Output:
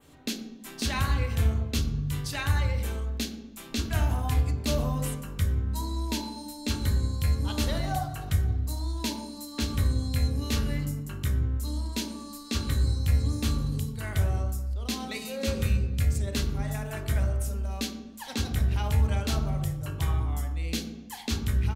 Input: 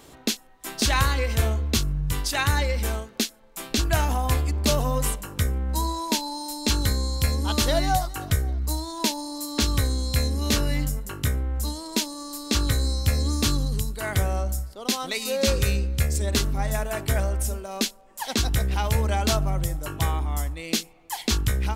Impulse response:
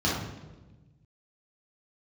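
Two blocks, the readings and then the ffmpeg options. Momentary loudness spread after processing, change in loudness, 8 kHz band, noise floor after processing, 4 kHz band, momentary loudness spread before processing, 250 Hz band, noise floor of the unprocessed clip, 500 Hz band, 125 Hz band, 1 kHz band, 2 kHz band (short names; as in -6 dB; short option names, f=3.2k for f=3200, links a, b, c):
7 LU, -4.0 dB, -9.5 dB, -44 dBFS, -8.0 dB, 6 LU, -3.5 dB, -50 dBFS, -8.0 dB, -1.5 dB, -8.5 dB, -7.0 dB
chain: -filter_complex "[0:a]adynamicequalizer=threshold=0.0112:dfrequency=5000:dqfactor=1:tfrequency=5000:tqfactor=1:attack=5:release=100:ratio=0.375:range=2.5:mode=cutabove:tftype=bell,asplit=2[a][b];[b]adelay=121,lowpass=f=1.2k:p=1,volume=-16.5dB,asplit=2[c][d];[d]adelay=121,lowpass=f=1.2k:p=1,volume=0.51,asplit=2[e][f];[f]adelay=121,lowpass=f=1.2k:p=1,volume=0.51,asplit=2[g][h];[h]adelay=121,lowpass=f=1.2k:p=1,volume=0.51,asplit=2[i][j];[j]adelay=121,lowpass=f=1.2k:p=1,volume=0.51[k];[a][c][e][g][i][k]amix=inputs=6:normalize=0,asplit=2[l][m];[1:a]atrim=start_sample=2205,afade=t=out:st=0.4:d=0.01,atrim=end_sample=18081[n];[m][n]afir=irnorm=-1:irlink=0,volume=-17.5dB[o];[l][o]amix=inputs=2:normalize=0,volume=-8dB"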